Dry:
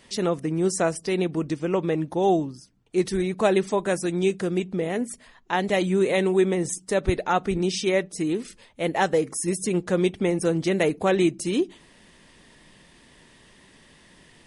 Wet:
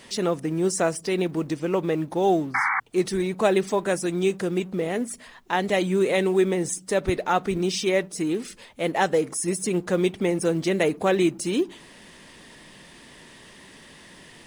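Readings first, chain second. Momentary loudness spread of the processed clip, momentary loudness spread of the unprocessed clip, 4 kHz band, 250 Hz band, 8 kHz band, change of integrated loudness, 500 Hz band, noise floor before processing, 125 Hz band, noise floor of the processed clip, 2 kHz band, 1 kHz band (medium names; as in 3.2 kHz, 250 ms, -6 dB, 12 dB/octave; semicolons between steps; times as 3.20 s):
6 LU, 6 LU, +1.0 dB, -0.5 dB, +1.0 dB, 0.0 dB, 0.0 dB, -55 dBFS, -1.5 dB, -49 dBFS, +2.0 dB, +1.0 dB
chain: companding laws mixed up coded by mu; bass shelf 100 Hz -8 dB; painted sound noise, 2.54–2.80 s, 760–2300 Hz -23 dBFS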